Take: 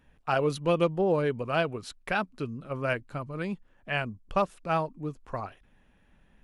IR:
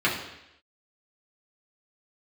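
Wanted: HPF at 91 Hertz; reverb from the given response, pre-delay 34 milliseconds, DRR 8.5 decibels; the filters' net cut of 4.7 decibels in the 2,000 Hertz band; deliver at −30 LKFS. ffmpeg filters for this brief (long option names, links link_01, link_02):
-filter_complex "[0:a]highpass=91,equalizer=frequency=2000:width_type=o:gain=-7,asplit=2[link_01][link_02];[1:a]atrim=start_sample=2205,adelay=34[link_03];[link_02][link_03]afir=irnorm=-1:irlink=0,volume=-23.5dB[link_04];[link_01][link_04]amix=inputs=2:normalize=0,volume=0.5dB"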